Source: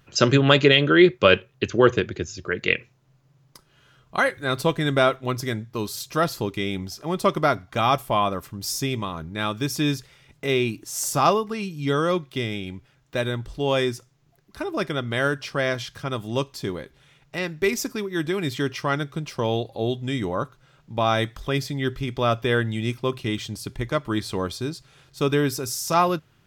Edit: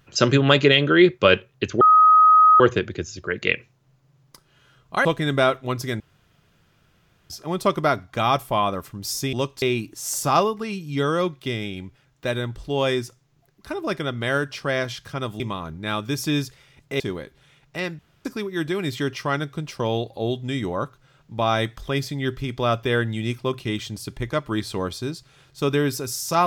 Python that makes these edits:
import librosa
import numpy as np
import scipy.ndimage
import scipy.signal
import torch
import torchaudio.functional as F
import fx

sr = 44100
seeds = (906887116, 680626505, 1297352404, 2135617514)

y = fx.edit(x, sr, fx.insert_tone(at_s=1.81, length_s=0.79, hz=1260.0, db=-9.5),
    fx.cut(start_s=4.26, length_s=0.38),
    fx.room_tone_fill(start_s=5.59, length_s=1.3),
    fx.swap(start_s=8.92, length_s=1.6, other_s=16.3, other_length_s=0.29),
    fx.room_tone_fill(start_s=17.58, length_s=0.26), tone=tone)